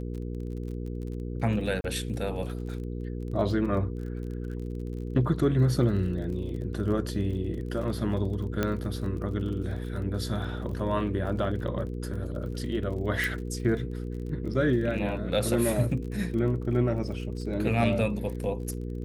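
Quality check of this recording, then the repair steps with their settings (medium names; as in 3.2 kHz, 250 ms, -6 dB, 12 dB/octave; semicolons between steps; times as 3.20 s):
crackle 34 per s -38 dBFS
hum 60 Hz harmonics 8 -34 dBFS
1.81–1.84 s: dropout 31 ms
8.63 s: pop -13 dBFS
13.24 s: pop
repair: de-click; de-hum 60 Hz, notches 8; interpolate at 1.81 s, 31 ms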